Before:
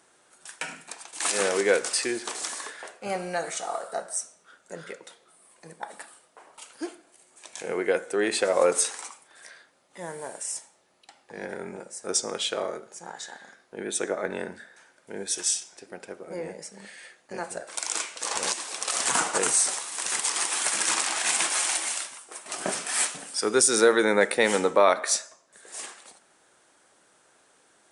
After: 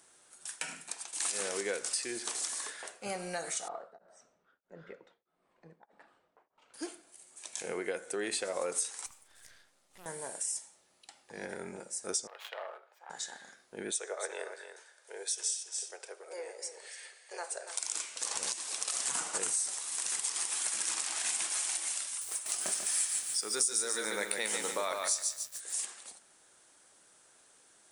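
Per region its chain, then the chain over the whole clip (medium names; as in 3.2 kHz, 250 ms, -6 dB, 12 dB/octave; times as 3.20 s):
3.68–6.74 s: tape spacing loss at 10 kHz 44 dB + tremolo of two beating tones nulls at 1.6 Hz
9.06–10.06 s: partial rectifier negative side -12 dB + compression 1.5:1, threshold -57 dBFS + loudspeaker Doppler distortion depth 0.74 ms
12.27–13.10 s: self-modulated delay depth 0.24 ms + high-pass 640 Hz 24 dB/octave + distance through air 440 m
13.91–17.81 s: Chebyshev band-pass 420–9700 Hz, order 4 + delay 283 ms -11 dB
22.07–25.85 s: tilt EQ +2 dB/octave + bit-crushed delay 144 ms, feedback 35%, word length 7-bit, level -4 dB
whole clip: treble shelf 3.7 kHz +10.5 dB; compression 3:1, threshold -27 dBFS; bass shelf 86 Hz +7.5 dB; trim -6.5 dB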